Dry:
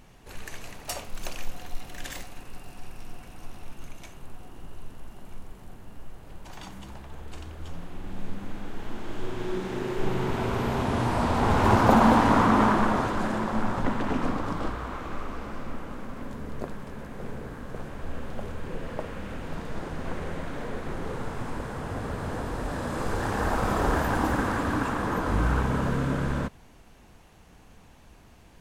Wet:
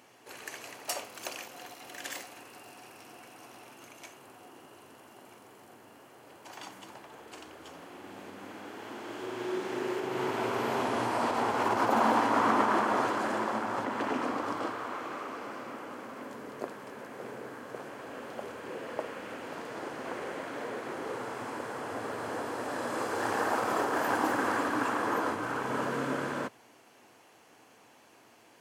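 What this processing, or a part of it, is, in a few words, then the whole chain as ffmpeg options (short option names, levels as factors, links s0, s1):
car stereo with a boomy subwoofer: -af "lowshelf=f=140:t=q:w=3:g=7.5,alimiter=limit=0.251:level=0:latency=1:release=123,highpass=f=240:w=0.5412,highpass=f=240:w=1.3066,bandreject=f=3700:w=14"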